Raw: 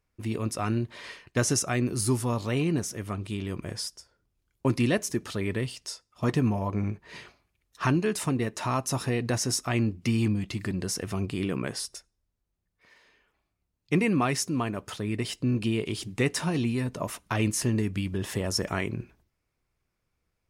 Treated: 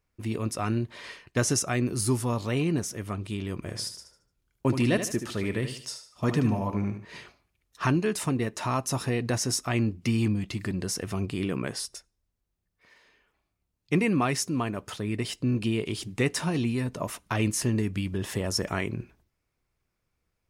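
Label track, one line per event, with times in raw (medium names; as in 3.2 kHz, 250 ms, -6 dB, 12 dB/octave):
3.570000	7.050000	feedback delay 75 ms, feedback 35%, level -9 dB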